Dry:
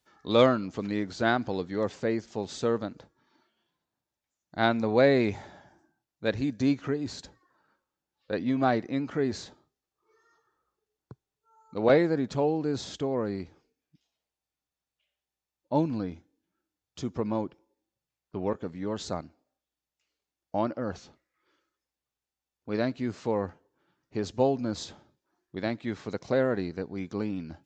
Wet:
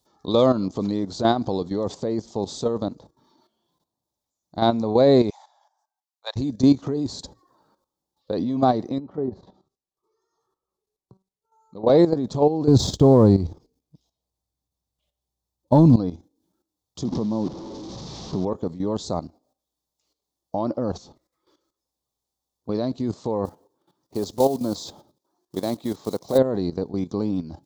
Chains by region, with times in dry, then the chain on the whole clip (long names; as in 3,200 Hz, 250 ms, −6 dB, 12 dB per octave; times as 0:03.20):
0:05.30–0:06.36: Butterworth high-pass 740 Hz + expander for the loud parts, over −51 dBFS
0:08.98–0:11.87: treble cut that deepens with the level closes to 1,100 Hz, closed at −29 dBFS + tuned comb filter 190 Hz, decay 0.27 s, mix 70%
0:12.68–0:15.96: parametric band 74 Hz +13 dB 2.6 octaves + leveller curve on the samples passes 1
0:17.05–0:18.45: linear delta modulator 32 kbit/s, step −36 dBFS + parametric band 190 Hz +10 dB 1.8 octaves + downward compressor 3 to 1, threshold −27 dBFS
0:23.45–0:26.39: one scale factor per block 5 bits + low-shelf EQ 140 Hz −10 dB
whole clip: output level in coarse steps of 12 dB; flat-topped bell 2,000 Hz −15 dB 1.3 octaves; boost into a limiter +17.5 dB; level −5.5 dB